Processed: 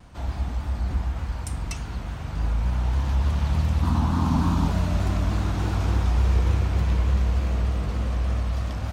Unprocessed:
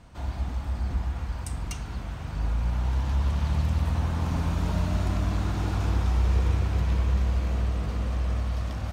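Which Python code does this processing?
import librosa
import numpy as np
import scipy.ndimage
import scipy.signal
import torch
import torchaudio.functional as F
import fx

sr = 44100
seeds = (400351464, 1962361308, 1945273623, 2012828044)

y = fx.graphic_eq(x, sr, hz=(250, 500, 1000, 2000, 4000), db=(11, -8, 9, -5, 3), at=(3.83, 4.68))
y = fx.vibrato_shape(y, sr, shape='saw_down', rate_hz=3.4, depth_cents=100.0)
y = y * librosa.db_to_amplitude(2.5)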